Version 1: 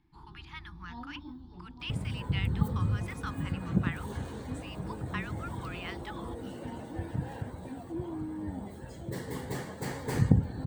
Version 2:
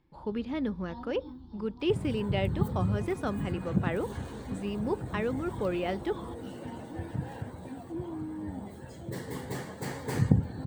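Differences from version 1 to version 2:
speech: remove inverse Chebyshev band-stop 220–650 Hz, stop band 40 dB; second sound: add high-pass 70 Hz

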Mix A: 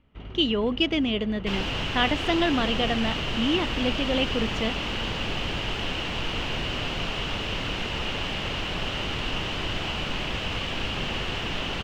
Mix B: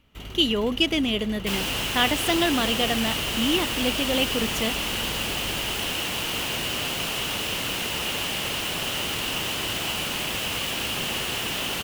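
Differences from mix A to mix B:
first sound: remove tape spacing loss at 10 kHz 22 dB; second sound: add high-pass 140 Hz 6 dB/octave; master: remove distance through air 170 m

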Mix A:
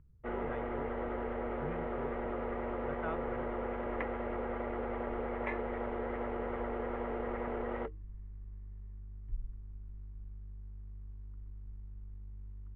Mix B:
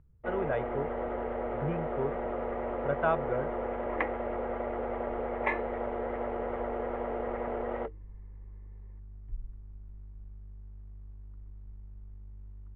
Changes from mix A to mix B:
speech +10.0 dB; second sound +8.5 dB; master: add peaking EQ 640 Hz +7 dB 0.86 oct

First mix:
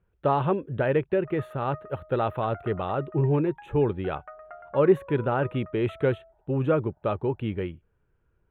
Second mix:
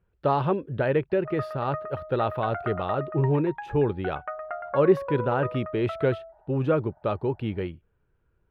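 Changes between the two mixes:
background +10.0 dB; master: remove Butterworth band-stop 5 kHz, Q 1.6

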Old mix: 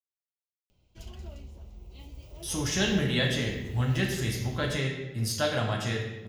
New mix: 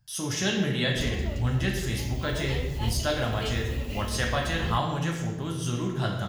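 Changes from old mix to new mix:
speech: entry -2.35 s; background +11.0 dB

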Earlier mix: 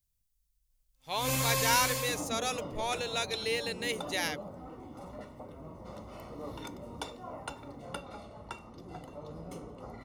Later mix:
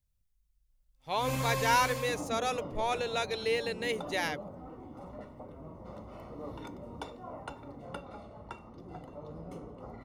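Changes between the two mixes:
speech +4.0 dB; master: add treble shelf 2.9 kHz -11.5 dB

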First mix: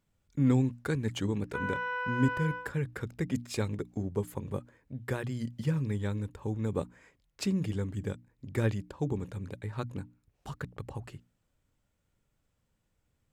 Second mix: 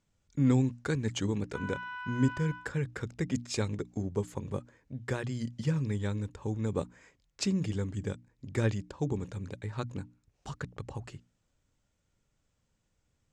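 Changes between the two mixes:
speech: add resonant low-pass 6.7 kHz, resonance Q 1.9; background: add rippled Chebyshev high-pass 920 Hz, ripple 9 dB

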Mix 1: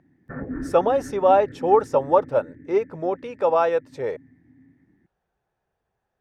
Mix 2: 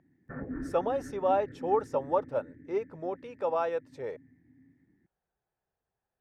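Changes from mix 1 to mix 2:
speech -10.0 dB; background -6.5 dB

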